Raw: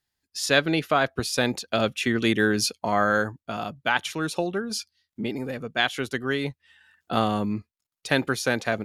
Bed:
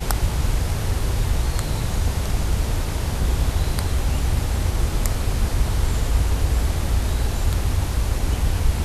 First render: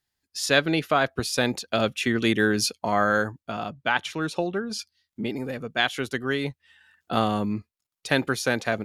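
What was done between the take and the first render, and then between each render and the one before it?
3.51–4.79 s: treble shelf 8.4 kHz -12 dB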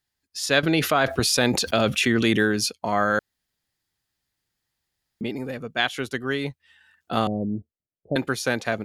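0.63–2.43 s: level flattener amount 70%; 3.19–5.21 s: room tone; 7.27–8.16 s: steep low-pass 670 Hz 48 dB/octave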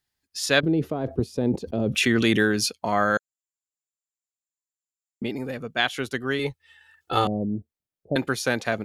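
0.60–1.95 s: FFT filter 430 Hz 0 dB, 650 Hz -10 dB, 940 Hz -12 dB, 1.4 kHz -24 dB; 3.17–5.22 s: band-pass filter 7.3 kHz, Q 16; 6.39–7.25 s: comb 2.3 ms, depth 82%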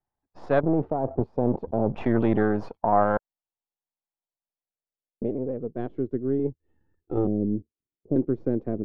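partial rectifier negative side -7 dB; low-pass sweep 840 Hz -> 350 Hz, 4.36–6.00 s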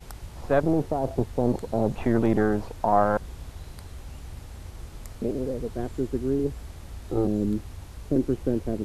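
add bed -19 dB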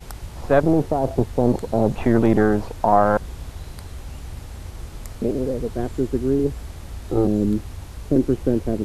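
trim +5.5 dB; peak limiter -3 dBFS, peak gain reduction 1.5 dB

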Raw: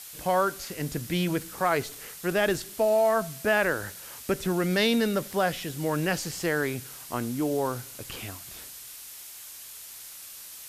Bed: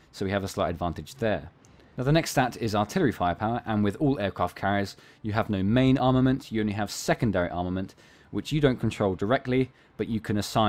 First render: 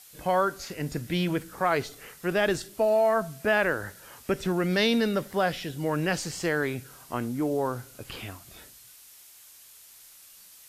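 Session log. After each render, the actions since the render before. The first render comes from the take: noise print and reduce 8 dB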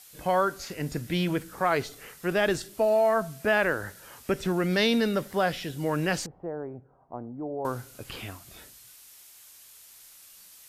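6.26–7.65 s: four-pole ladder low-pass 920 Hz, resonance 45%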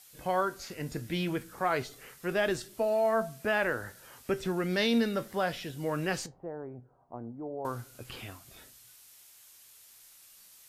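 flange 0.47 Hz, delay 7.5 ms, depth 1.5 ms, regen +74%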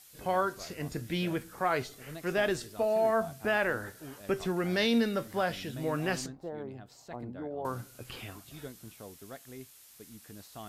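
add bed -22.5 dB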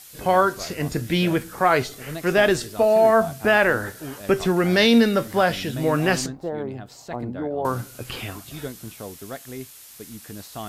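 trim +11 dB

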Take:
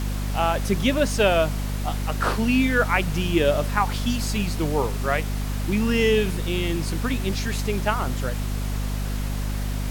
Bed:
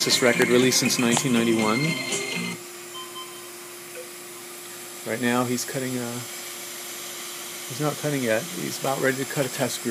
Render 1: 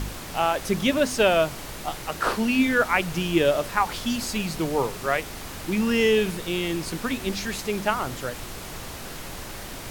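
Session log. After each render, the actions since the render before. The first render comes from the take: de-hum 50 Hz, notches 5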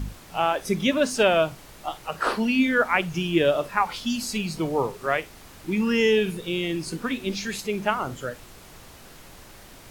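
noise print and reduce 10 dB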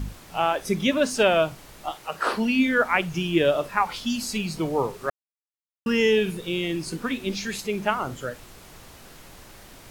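1.91–2.34 s: bass shelf 140 Hz -10.5 dB; 5.10–5.86 s: mute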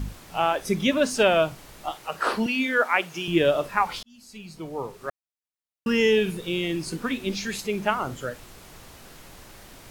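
2.46–3.28 s: high-pass 350 Hz; 4.03–5.87 s: fade in linear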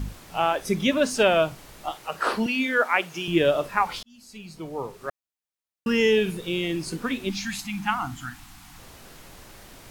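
7.30–8.78 s: spectral selection erased 340–680 Hz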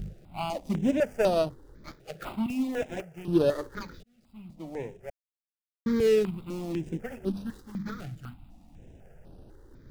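median filter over 41 samples; stepped phaser 4 Hz 260–7100 Hz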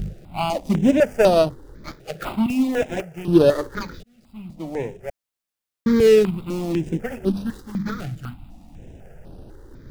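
trim +9 dB

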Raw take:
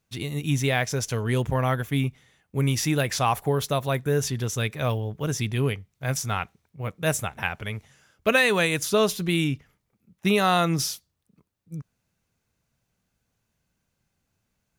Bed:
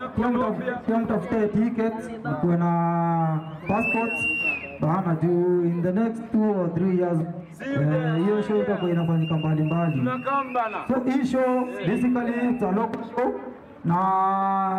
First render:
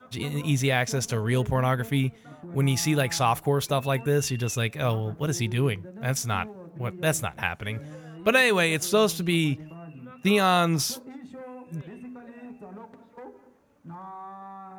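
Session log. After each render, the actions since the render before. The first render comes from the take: add bed -19.5 dB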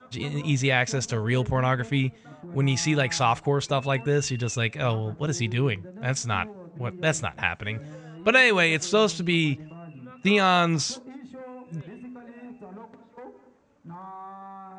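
steep low-pass 8.3 kHz 72 dB/octave; dynamic bell 2.2 kHz, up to +4 dB, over -36 dBFS, Q 1.2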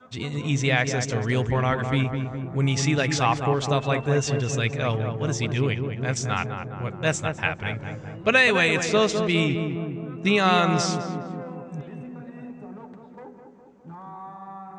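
filtered feedback delay 206 ms, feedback 67%, low-pass 1.4 kHz, level -5.5 dB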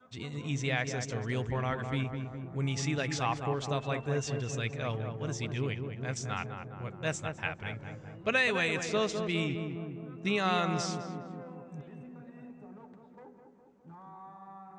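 trim -9.5 dB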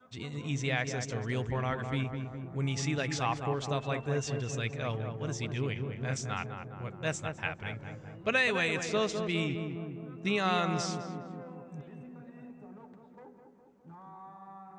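5.73–6.21 s: doubling 30 ms -4.5 dB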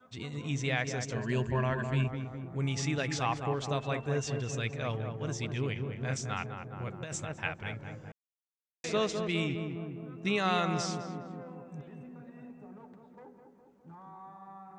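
1.15–2.08 s: rippled EQ curve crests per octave 1.4, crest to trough 11 dB; 6.72–7.34 s: compressor with a negative ratio -37 dBFS; 8.12–8.84 s: mute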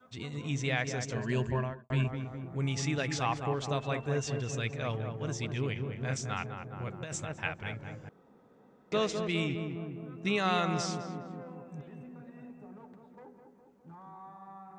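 1.48–1.90 s: studio fade out; 8.09–8.92 s: room tone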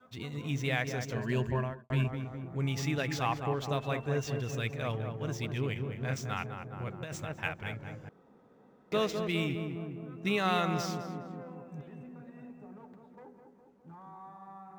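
median filter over 5 samples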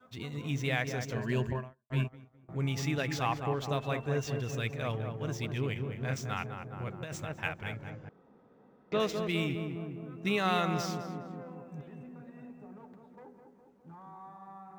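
1.53–2.49 s: upward expansion 2.5:1, over -45 dBFS; 7.90–9.00 s: distance through air 120 m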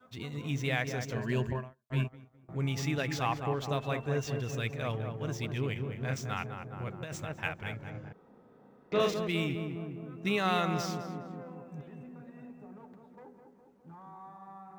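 7.91–9.14 s: doubling 35 ms -2 dB

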